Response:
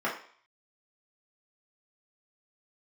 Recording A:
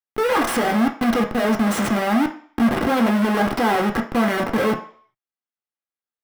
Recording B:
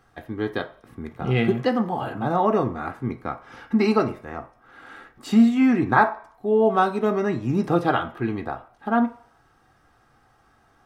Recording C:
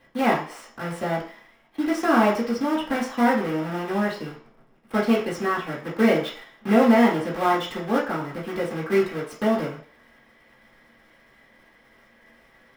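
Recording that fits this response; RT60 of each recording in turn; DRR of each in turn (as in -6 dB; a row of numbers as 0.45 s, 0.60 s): C; 0.50 s, 0.50 s, 0.50 s; 1.5 dB, 6.0 dB, -7.5 dB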